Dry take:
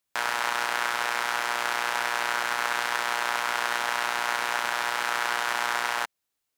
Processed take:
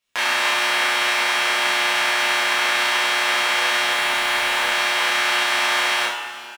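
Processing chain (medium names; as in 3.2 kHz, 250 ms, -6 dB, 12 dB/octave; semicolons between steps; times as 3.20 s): median filter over 3 samples; peaking EQ 2.8 kHz +8 dB 0.52 oct; 3.88–4.69 s: overload inside the chain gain 13 dB; early reflections 30 ms -3 dB, 72 ms -9 dB; two-slope reverb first 0.29 s, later 3 s, from -17 dB, DRR -4.5 dB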